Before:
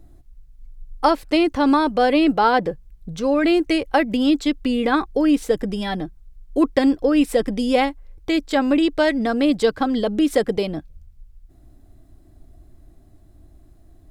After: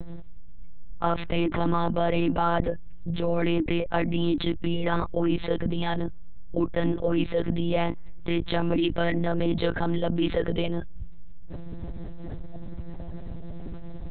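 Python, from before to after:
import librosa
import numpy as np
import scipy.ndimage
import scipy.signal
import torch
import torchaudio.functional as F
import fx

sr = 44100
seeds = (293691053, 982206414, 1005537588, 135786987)

y = fx.spec_quant(x, sr, step_db=15)
y = fx.lpc_monotone(y, sr, seeds[0], pitch_hz=170.0, order=10)
y = fx.env_flatten(y, sr, amount_pct=70)
y = F.gain(torch.from_numpy(y), -9.0).numpy()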